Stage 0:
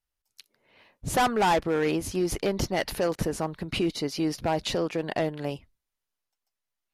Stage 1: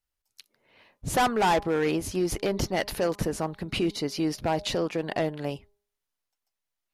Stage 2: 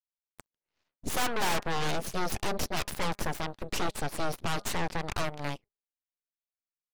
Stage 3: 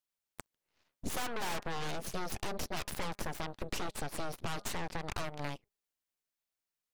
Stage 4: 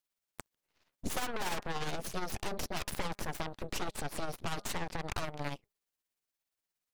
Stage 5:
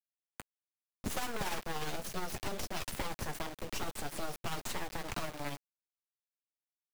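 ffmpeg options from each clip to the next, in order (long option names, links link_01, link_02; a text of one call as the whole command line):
ffmpeg -i in.wav -af "bandreject=frequency=204.1:width_type=h:width=4,bandreject=frequency=408.2:width_type=h:width=4,bandreject=frequency=612.3:width_type=h:width=4,bandreject=frequency=816.4:width_type=h:width=4,bandreject=frequency=1020.5:width_type=h:width=4,bandreject=frequency=1224.6:width_type=h:width=4" out.wav
ffmpeg -i in.wav -af "aeval=exprs='0.188*(cos(1*acos(clip(val(0)/0.188,-1,1)))-cos(1*PI/2))+0.0596*(cos(3*acos(clip(val(0)/0.188,-1,1)))-cos(3*PI/2))+0.0596*(cos(8*acos(clip(val(0)/0.188,-1,1)))-cos(8*PI/2))':channel_layout=same,volume=-4.5dB" out.wav
ffmpeg -i in.wav -af "acompressor=threshold=-37dB:ratio=12,volume=4.5dB" out.wav
ffmpeg -i in.wav -af "tremolo=f=17:d=0.47,volume=3dB" out.wav
ffmpeg -i in.wav -filter_complex "[0:a]flanger=delay=8.6:depth=1.5:regen=-63:speed=0.65:shape=sinusoidal,acrossover=split=130|1300|2200[link_01][link_02][link_03][link_04];[link_01]aeval=exprs='(mod(59.6*val(0)+1,2)-1)/59.6':channel_layout=same[link_05];[link_05][link_02][link_03][link_04]amix=inputs=4:normalize=0,acrusher=bits=7:mix=0:aa=0.000001,volume=2.5dB" out.wav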